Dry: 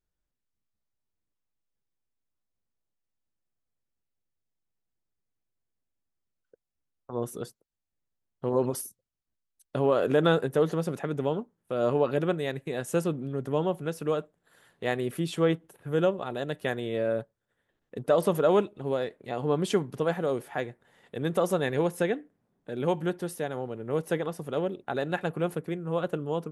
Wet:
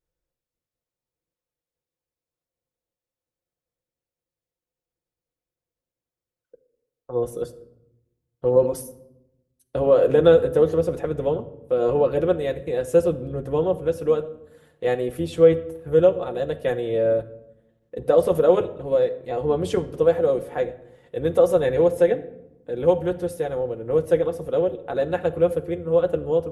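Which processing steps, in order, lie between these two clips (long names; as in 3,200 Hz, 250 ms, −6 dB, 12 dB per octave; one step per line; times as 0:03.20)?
sub-octave generator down 1 octave, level −6 dB
parametric band 490 Hz +11.5 dB 0.62 octaves
notch comb filter 200 Hz
rectangular room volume 2,800 cubic metres, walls furnished, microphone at 0.89 metres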